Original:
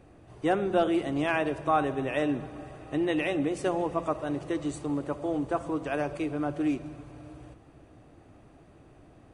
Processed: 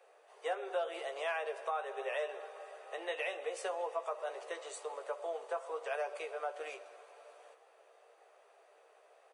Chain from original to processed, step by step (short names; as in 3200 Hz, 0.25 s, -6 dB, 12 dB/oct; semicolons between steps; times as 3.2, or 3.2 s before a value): steep high-pass 430 Hz 72 dB/oct; compressor 3:1, threshold -32 dBFS, peak gain reduction 9.5 dB; doubler 15 ms -6.5 dB; gain -3.5 dB